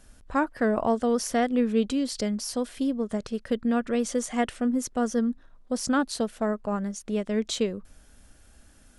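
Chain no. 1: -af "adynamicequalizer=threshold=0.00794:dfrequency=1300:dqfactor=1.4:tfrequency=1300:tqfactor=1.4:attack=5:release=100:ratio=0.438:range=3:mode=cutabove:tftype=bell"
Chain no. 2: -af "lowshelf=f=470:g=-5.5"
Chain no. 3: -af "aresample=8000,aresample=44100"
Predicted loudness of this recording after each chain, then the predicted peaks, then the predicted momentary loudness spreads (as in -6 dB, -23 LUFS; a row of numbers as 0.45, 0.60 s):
-27.5, -30.5, -27.5 LUFS; -12.5, -14.0, -12.0 dBFS; 6, 7, 7 LU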